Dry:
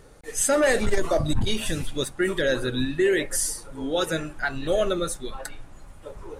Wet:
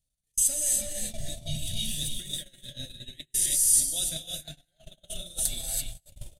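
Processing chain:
output level in coarse steps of 13 dB
reverb whose tail is shaped and stops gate 360 ms rising, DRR −2.5 dB
reversed playback
downward compressor 10 to 1, threshold −36 dBFS, peak gain reduction 19 dB
reversed playback
drawn EQ curve 130 Hz 0 dB, 240 Hz −7 dB, 430 Hz −26 dB, 660 Hz −5 dB, 1,100 Hz −30 dB, 3,200 Hz +6 dB, 5,200 Hz +5 dB, 13,000 Hz +14 dB
on a send: repeating echo 287 ms, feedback 20%, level −9.5 dB
on the sum: noise gate −40 dBFS, range −36 dB
level +7.5 dB

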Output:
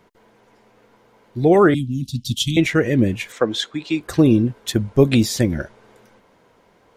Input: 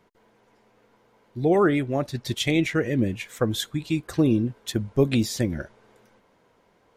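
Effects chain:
0:01.74–0:02.57: Chebyshev band-stop filter 260–3,000 Hz, order 4
0:03.32–0:04.01: three-way crossover with the lows and the highs turned down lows −18 dB, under 240 Hz, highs −24 dB, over 6,800 Hz
level +6.5 dB

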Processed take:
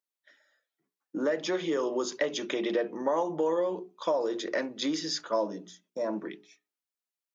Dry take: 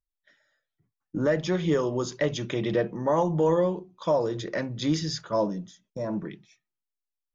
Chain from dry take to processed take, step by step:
mains-hum notches 60/120/180/240/300/360/420 Hz
downward compressor, threshold −25 dBFS, peak gain reduction 6.5 dB
high-pass filter 260 Hz 24 dB per octave
level +1.5 dB

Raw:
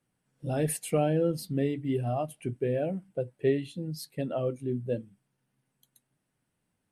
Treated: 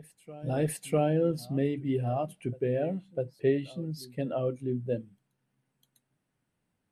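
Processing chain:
high-shelf EQ 5,900 Hz −7 dB
backwards echo 651 ms −19.5 dB

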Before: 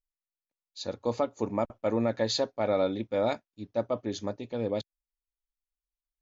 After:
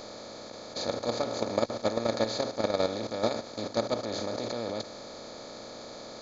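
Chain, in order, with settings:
compressor on every frequency bin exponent 0.2
output level in coarse steps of 10 dB
level −3.5 dB

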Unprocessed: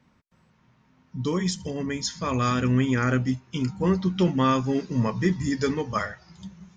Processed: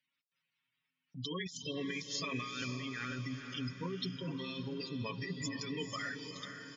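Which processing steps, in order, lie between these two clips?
meter weighting curve D
gate on every frequency bin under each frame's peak −15 dB strong
noise gate −50 dBFS, range −24 dB
first-order pre-emphasis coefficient 0.8
comb filter 7.2 ms, depth 75%
compressor whose output falls as the input rises −38 dBFS, ratio −1
feedback delay with all-pass diffusion 479 ms, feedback 51%, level −7.5 dB
one half of a high-frequency compander encoder only
level −3 dB

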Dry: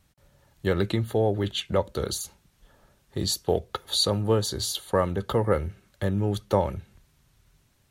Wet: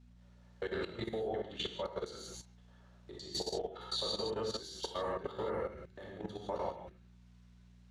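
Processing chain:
reversed piece by piece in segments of 103 ms
three-way crossover with the lows and the highs turned down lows −13 dB, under 250 Hz, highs −23 dB, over 7,100 Hz
mains-hum notches 50/100/150/200/250/300/350 Hz
downward compressor 1.5 to 1, threshold −54 dBFS, peak gain reduction 12.5 dB
hum with harmonics 60 Hz, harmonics 4, −52 dBFS −5 dB per octave
reverb whose tail is shaped and stops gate 200 ms flat, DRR −2.5 dB
output level in coarse steps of 12 dB

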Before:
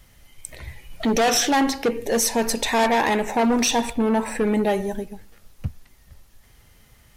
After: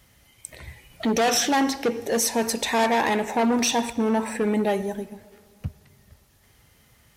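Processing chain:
high-pass filter 68 Hz 12 dB per octave
on a send: convolution reverb RT60 2.6 s, pre-delay 83 ms, DRR 20.5 dB
on the sum: level −2 dB

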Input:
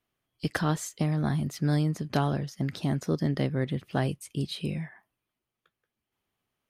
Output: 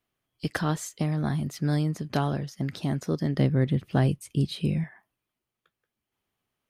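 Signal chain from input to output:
0:03.38–0:04.84: low-shelf EQ 300 Hz +8 dB

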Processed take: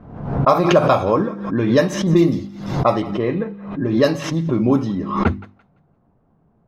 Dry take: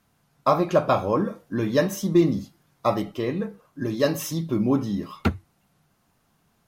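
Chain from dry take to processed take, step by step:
mains-hum notches 50/100/150/200/250/300/350 Hz
low-pass that shuts in the quiet parts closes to 630 Hz, open at −15.5 dBFS
in parallel at −1 dB: downward compressor, threshold −33 dBFS, peak gain reduction 17.5 dB
on the sum: feedback echo with a high-pass in the loop 170 ms, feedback 26%, high-pass 910 Hz, level −17 dB
background raised ahead of every attack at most 69 dB per second
level +4 dB

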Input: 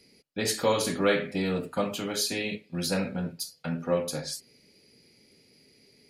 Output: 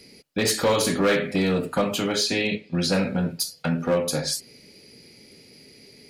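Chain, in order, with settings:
0:02.15–0:02.94: low-pass filter 6,100 Hz 12 dB per octave
in parallel at +2 dB: downward compressor 16 to 1, threshold −33 dBFS, peak gain reduction 15.5 dB
on the sum: hard clipping −18.5 dBFS, distortion −16 dB
level +3 dB

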